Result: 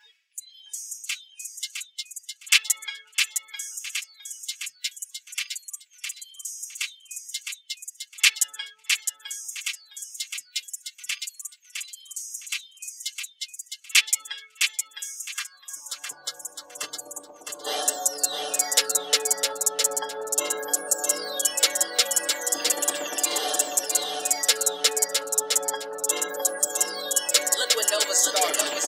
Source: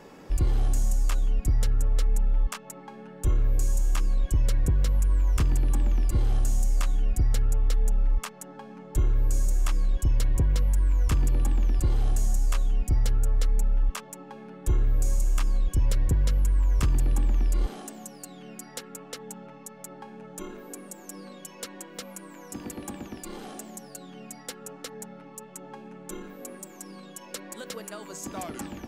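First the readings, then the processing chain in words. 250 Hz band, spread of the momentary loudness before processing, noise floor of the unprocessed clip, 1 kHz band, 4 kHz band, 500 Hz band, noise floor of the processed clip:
−8.5 dB, 17 LU, −47 dBFS, +8.0 dB, +19.5 dB, +8.5 dB, −57 dBFS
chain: comb filter 6.7 ms, depth 100%
reversed playback
downward compressor 16 to 1, threshold −31 dBFS, peak gain reduction 17 dB
reversed playback
meter weighting curve D
high-pass filter sweep 2,300 Hz → 570 Hz, 0:14.98–0:16.60
high-shelf EQ 5,300 Hz +9.5 dB
noise reduction from a noise print of the clip's start 29 dB
on a send: repeating echo 660 ms, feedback 20%, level −5 dB
on the sum: level +5.5 dB

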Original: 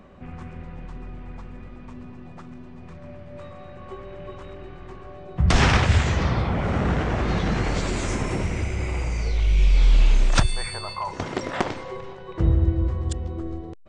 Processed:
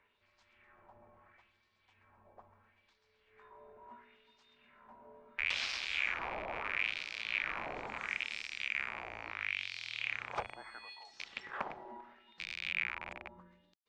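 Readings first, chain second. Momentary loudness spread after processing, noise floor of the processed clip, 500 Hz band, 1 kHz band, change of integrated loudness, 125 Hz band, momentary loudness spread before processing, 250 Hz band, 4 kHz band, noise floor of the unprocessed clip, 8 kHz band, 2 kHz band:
18 LU, −75 dBFS, −19.5 dB, −14.5 dB, −14.0 dB, −38.5 dB, 22 LU, −29.5 dB, −9.0 dB, −41 dBFS, −20.0 dB, −5.5 dB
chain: loose part that buzzes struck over −26 dBFS, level −9 dBFS
auto-filter band-pass sine 0.74 Hz 860–4,800 Hz
frequency shifter −150 Hz
level −7.5 dB

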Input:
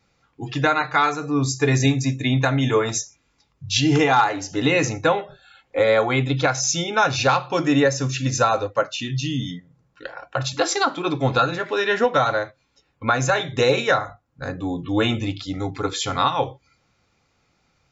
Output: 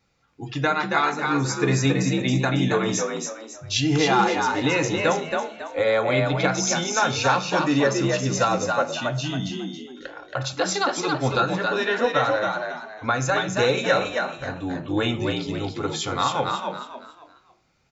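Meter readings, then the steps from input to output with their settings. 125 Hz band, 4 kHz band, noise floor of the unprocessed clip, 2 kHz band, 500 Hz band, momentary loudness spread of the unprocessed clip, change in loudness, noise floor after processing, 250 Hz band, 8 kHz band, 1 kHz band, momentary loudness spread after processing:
−2.5 dB, −1.5 dB, −67 dBFS, −1.0 dB, −1.5 dB, 11 LU, −2.0 dB, −54 dBFS, −1.0 dB, can't be measured, −1.5 dB, 11 LU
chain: hum removal 108.2 Hz, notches 28
echo with shifted repeats 275 ms, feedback 33%, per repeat +57 Hz, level −4 dB
level −3 dB

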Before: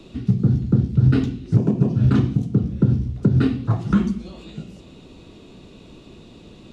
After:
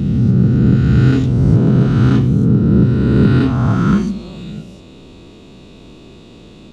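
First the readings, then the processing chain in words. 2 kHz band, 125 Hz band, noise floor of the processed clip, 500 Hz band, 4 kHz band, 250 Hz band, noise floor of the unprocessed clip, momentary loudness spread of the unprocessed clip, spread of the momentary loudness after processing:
+9.5 dB, +6.5 dB, −39 dBFS, +8.5 dB, can't be measured, +7.5 dB, −45 dBFS, 11 LU, 13 LU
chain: peak hold with a rise ahead of every peak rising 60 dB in 2.51 s
level +1.5 dB

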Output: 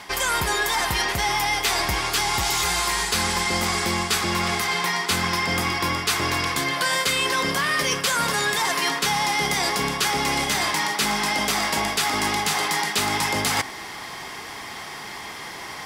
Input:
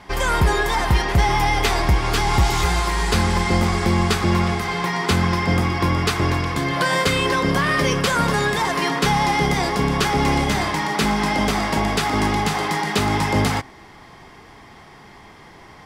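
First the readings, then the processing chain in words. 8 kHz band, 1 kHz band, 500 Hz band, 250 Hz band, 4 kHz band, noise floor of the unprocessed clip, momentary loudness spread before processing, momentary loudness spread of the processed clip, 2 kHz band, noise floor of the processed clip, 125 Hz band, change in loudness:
+5.0 dB, −3.0 dB, −6.0 dB, −8.5 dB, +2.5 dB, −45 dBFS, 3 LU, 13 LU, 0.0 dB, −36 dBFS, −12.0 dB, −2.0 dB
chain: spectral tilt +3 dB per octave
reversed playback
downward compressor 4 to 1, threshold −31 dBFS, peak gain reduction 15.5 dB
reversed playback
level +8.5 dB

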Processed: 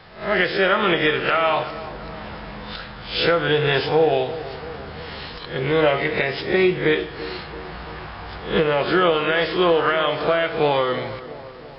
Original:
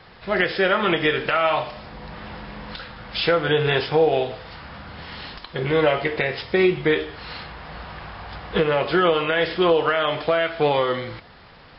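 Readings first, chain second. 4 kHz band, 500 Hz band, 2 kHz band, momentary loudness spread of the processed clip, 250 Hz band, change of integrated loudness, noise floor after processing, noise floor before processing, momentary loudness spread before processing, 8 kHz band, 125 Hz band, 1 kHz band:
+2.0 dB, +1.0 dB, +2.0 dB, 16 LU, +1.0 dB, +1.0 dB, −37 dBFS, −47 dBFS, 18 LU, can't be measured, +1.0 dB, +1.5 dB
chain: peak hold with a rise ahead of every peak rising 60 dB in 0.40 s
feedback echo with a low-pass in the loop 337 ms, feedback 60%, low-pass 1,700 Hz, level −14 dB

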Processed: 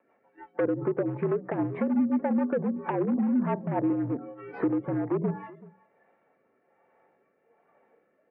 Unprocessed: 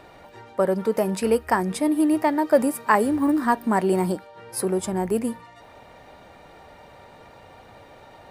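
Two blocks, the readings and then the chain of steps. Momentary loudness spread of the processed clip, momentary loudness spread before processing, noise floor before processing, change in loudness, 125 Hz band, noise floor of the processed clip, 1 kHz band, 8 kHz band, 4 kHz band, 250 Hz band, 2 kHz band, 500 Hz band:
7 LU, 8 LU, −49 dBFS, −5.5 dB, −1.0 dB, −70 dBFS, −11.5 dB, below −40 dB, below −20 dB, −3.5 dB, −12.5 dB, −7.0 dB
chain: mains-hum notches 50/100/150/200/250/300/350/400 Hz
noise gate −43 dBFS, range −8 dB
treble cut that deepens with the level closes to 610 Hz, closed at −20 dBFS
noise reduction from a noise print of the clip's start 16 dB
downward compressor 6 to 1, threshold −26 dBFS, peak gain reduction 11.5 dB
gain into a clipping stage and back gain 26.5 dB
rotating-speaker cabinet horn 6 Hz, later 1.2 Hz, at 0:02.50
slap from a distant wall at 65 metres, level −21 dB
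single-sideband voice off tune −61 Hz 250–2,400 Hz
level +7.5 dB

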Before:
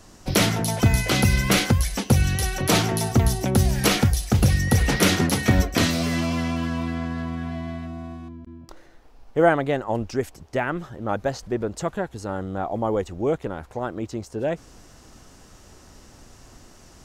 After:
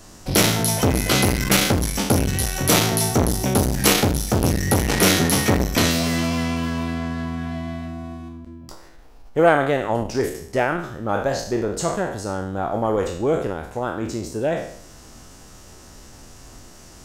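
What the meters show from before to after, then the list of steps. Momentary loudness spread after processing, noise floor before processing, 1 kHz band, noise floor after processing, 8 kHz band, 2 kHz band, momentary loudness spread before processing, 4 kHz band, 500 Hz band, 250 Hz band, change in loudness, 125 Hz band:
12 LU, −50 dBFS, +3.5 dB, −44 dBFS, +5.5 dB, +2.0 dB, 12 LU, +3.5 dB, +3.5 dB, +2.0 dB, +2.5 dB, −1.0 dB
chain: peak hold with a decay on every bin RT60 0.61 s
high-shelf EQ 7,100 Hz +5.5 dB
saturating transformer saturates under 690 Hz
level +2 dB

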